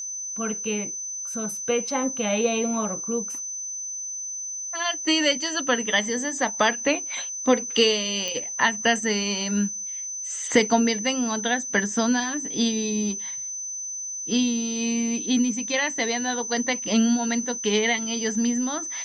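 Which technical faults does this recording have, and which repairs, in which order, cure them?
whistle 6,100 Hz −30 dBFS
0:08.28: click −16 dBFS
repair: click removal
notch filter 6,100 Hz, Q 30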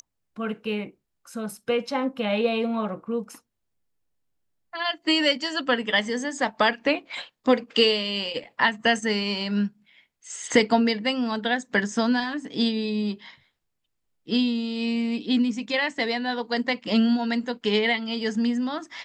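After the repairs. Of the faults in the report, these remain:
none of them is left

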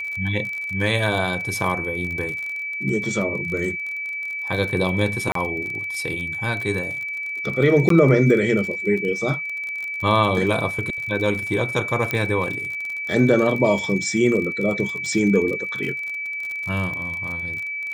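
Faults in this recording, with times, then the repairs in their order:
surface crackle 37 per second −27 dBFS
whistle 2,300 Hz −26 dBFS
0:05.32–0:05.35: drop-out 33 ms
0:07.89–0:07.90: drop-out 13 ms
0:12.11: click −9 dBFS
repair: click removal
notch filter 2,300 Hz, Q 30
repair the gap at 0:05.32, 33 ms
repair the gap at 0:07.89, 13 ms

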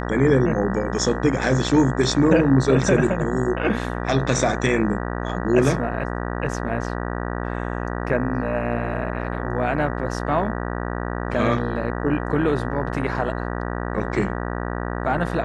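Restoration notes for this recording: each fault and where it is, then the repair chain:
mains buzz 60 Hz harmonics 32 −27 dBFS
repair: hum removal 60 Hz, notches 32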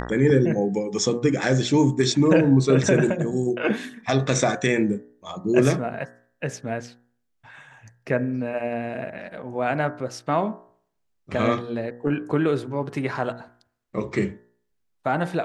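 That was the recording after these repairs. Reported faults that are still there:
none of them is left

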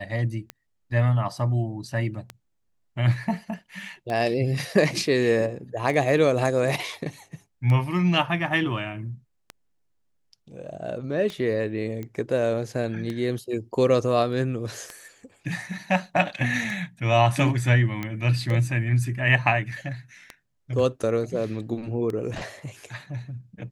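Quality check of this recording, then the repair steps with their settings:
scratch tick 33 1/3 rpm −18 dBFS
0:12.03: click −22 dBFS
0:18.03: click −16 dBFS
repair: click removal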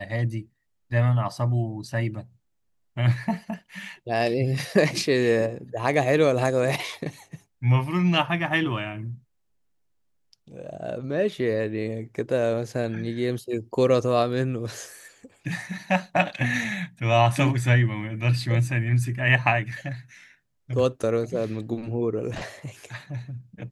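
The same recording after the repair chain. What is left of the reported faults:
none of them is left

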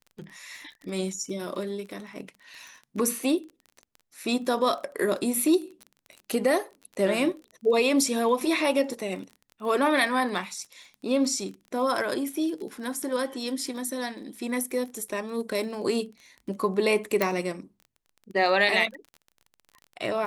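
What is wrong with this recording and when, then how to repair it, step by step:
surface crackle 25 per second −36 dBFS
0:17.22: click −9 dBFS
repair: click removal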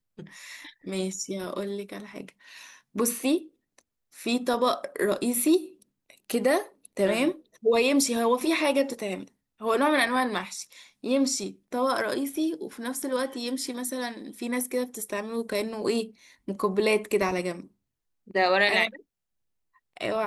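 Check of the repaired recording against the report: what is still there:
none of them is left

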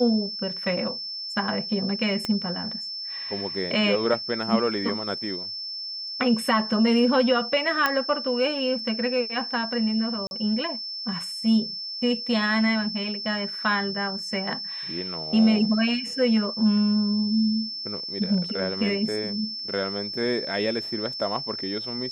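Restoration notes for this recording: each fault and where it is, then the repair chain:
whistle 5,300 Hz −31 dBFS
0:02.25: click −14 dBFS
0:07.86: click −8 dBFS
0:10.27–0:10.31: drop-out 41 ms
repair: click removal
notch filter 5,300 Hz, Q 30
repair the gap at 0:10.27, 41 ms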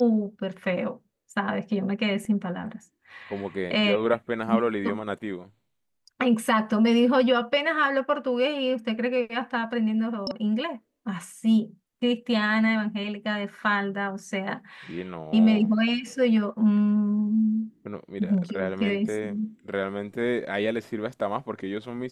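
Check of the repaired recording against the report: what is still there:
0:02.25: click

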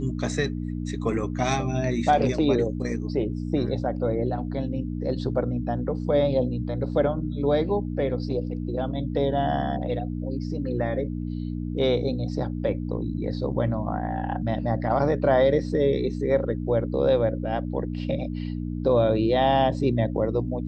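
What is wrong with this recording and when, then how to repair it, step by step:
mains hum 60 Hz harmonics 5 −30 dBFS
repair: hum removal 60 Hz, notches 5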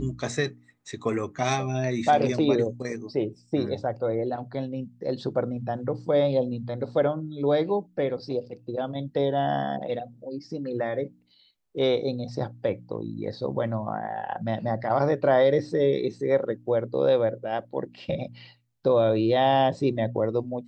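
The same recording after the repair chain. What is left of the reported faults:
none of them is left

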